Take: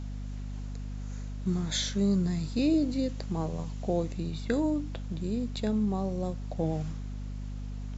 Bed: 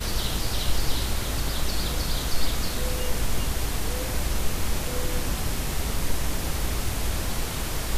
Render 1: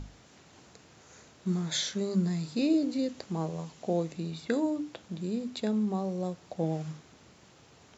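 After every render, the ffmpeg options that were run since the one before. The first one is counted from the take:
-af "bandreject=f=50:t=h:w=6,bandreject=f=100:t=h:w=6,bandreject=f=150:t=h:w=6,bandreject=f=200:t=h:w=6,bandreject=f=250:t=h:w=6,bandreject=f=300:t=h:w=6"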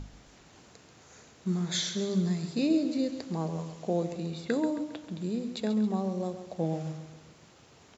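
-af "aecho=1:1:135|270|405|540|675:0.299|0.14|0.0659|0.031|0.0146"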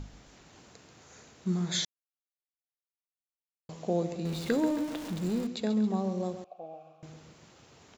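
-filter_complex "[0:a]asettb=1/sr,asplit=3[s0][s1][s2];[s0]atrim=end=4.254[s3];[s1]atrim=start=4.25:end=5.47,asetpts=PTS-STARTPTS,afade=t=in:d=0.004:c=qsin,afade=t=out:st=1.216:d=0.004:c=qsin,aeval=exprs='val(0)+0.5*0.0141*sgn(val(0))':c=same[s4];[s2]atrim=start=5.466[s5];[s3][s4]acrossfade=d=0.004:c1=hsin:c2=qsin[s6];[s6][s5]acrossfade=d=0.004:c1=qsin:c2=hsin,asettb=1/sr,asplit=3[s7][s8][s9];[s7]atrim=end=6.444[s10];[s8]atrim=start=6.44:end=7.03,asetpts=PTS-STARTPTS,afade=t=in:d=0.004:c=qsin,afade=t=out:st=0.586:d=0.004:c=qsin,asplit=3[s11][s12][s13];[s11]bandpass=f=730:t=q:w=8,volume=1[s14];[s12]bandpass=f=1090:t=q:w=8,volume=0.501[s15];[s13]bandpass=f=2440:t=q:w=8,volume=0.355[s16];[s14][s15][s16]amix=inputs=3:normalize=0[s17];[s9]atrim=start=7.026[s18];[s10][s17]acrossfade=d=0.004:c1=hsin:c2=qsin[s19];[s19][s18]acrossfade=d=0.004:c1=qsin:c2=hsin,asplit=3[s20][s21][s22];[s20]atrim=end=1.85,asetpts=PTS-STARTPTS,afade=t=out:st=1.846:d=0.004:c=hsin[s23];[s21]atrim=start=1.85:end=3.69,asetpts=PTS-STARTPTS,volume=0[s24];[s22]atrim=start=3.69,asetpts=PTS-STARTPTS,afade=t=in:d=0.004:c=hsin[s25];[s23][s24][s25]concat=n=3:v=0:a=1"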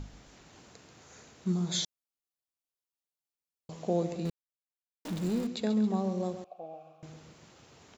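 -filter_complex "[0:a]asettb=1/sr,asplit=3[s0][s1][s2];[s0]atrim=end=1.524[s3];[s1]atrim=start=1.52:end=3.72,asetpts=PTS-STARTPTS,afade=t=in:d=0.004:c=qsin,afade=t=out:st=2.196:d=0.004:c=qsin,equalizer=f=1800:t=o:w=0.77:g=-9[s4];[s2]atrim=start=3.716[s5];[s3][s4]acrossfade=d=0.004:c1=hsin:c2=qsin[s6];[s6][s5]acrossfade=d=0.004:c1=qsin:c2=hsin,asplit=3[s7][s8][s9];[s7]atrim=end=4.3,asetpts=PTS-STARTPTS,afade=t=out:st=4.296:d=0.004:c=hsin[s10];[s8]atrim=start=4.3:end=5.05,asetpts=PTS-STARTPTS,volume=0[s11];[s9]atrim=start=5.05,asetpts=PTS-STARTPTS,afade=t=in:d=0.004:c=hsin[s12];[s10][s11][s12]concat=n=3:v=0:a=1"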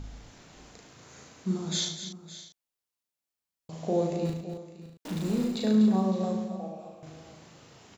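-filter_complex "[0:a]asplit=2[s0][s1];[s1]adelay=37,volume=0.794[s2];[s0][s2]amix=inputs=2:normalize=0,aecho=1:1:75|99|241|563|637:0.355|0.188|0.316|0.168|0.1"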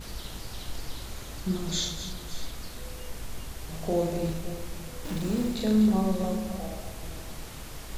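-filter_complex "[1:a]volume=0.237[s0];[0:a][s0]amix=inputs=2:normalize=0"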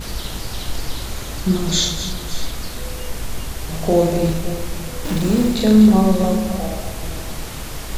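-af "volume=3.76"

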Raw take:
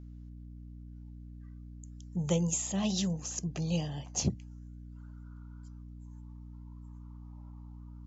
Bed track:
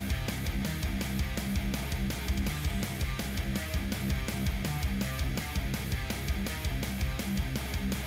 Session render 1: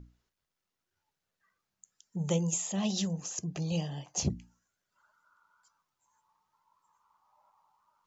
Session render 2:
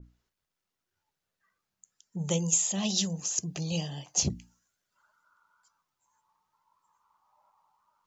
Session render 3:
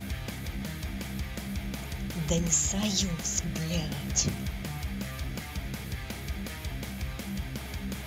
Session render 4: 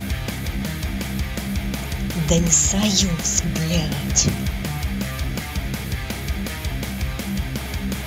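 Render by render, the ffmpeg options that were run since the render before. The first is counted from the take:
-af "bandreject=f=60:t=h:w=6,bandreject=f=120:t=h:w=6,bandreject=f=180:t=h:w=6,bandreject=f=240:t=h:w=6,bandreject=f=300:t=h:w=6"
-af "adynamicequalizer=threshold=0.00224:dfrequency=2500:dqfactor=0.7:tfrequency=2500:tqfactor=0.7:attack=5:release=100:ratio=0.375:range=4:mode=boostabove:tftype=highshelf"
-filter_complex "[1:a]volume=0.668[s0];[0:a][s0]amix=inputs=2:normalize=0"
-af "volume=3.16,alimiter=limit=0.708:level=0:latency=1"

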